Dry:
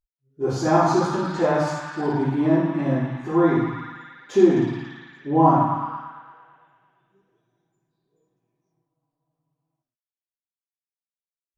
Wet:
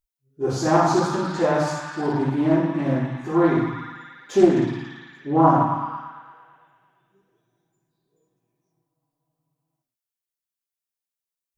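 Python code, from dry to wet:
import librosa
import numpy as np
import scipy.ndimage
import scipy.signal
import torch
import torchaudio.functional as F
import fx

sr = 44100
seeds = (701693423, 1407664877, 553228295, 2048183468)

y = fx.high_shelf(x, sr, hz=6300.0, db=8.0)
y = fx.doppler_dist(y, sr, depth_ms=0.23)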